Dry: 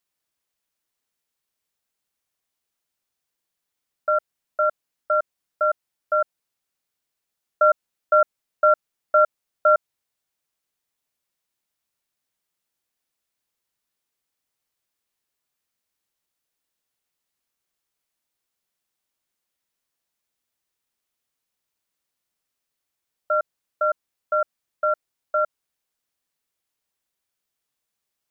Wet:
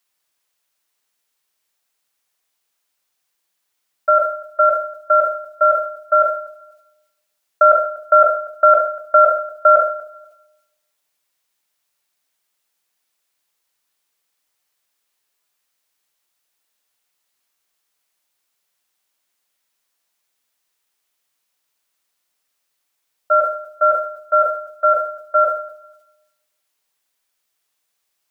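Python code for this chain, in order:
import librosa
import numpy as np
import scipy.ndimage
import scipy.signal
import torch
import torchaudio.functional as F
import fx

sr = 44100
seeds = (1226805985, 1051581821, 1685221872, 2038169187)

p1 = fx.hum_notches(x, sr, base_hz=60, count=9)
p2 = fx.level_steps(p1, sr, step_db=21)
p3 = p1 + (p2 * 10.0 ** (0.0 / 20.0))
p4 = fx.low_shelf(p3, sr, hz=310.0, db=-11.5)
p5 = p4 + fx.echo_feedback(p4, sr, ms=243, feedback_pct=19, wet_db=-20, dry=0)
p6 = fx.room_shoebox(p5, sr, seeds[0], volume_m3=540.0, walls='mixed', distance_m=0.39)
p7 = fx.sustainer(p6, sr, db_per_s=85.0)
y = p7 * 10.0 ** (3.5 / 20.0)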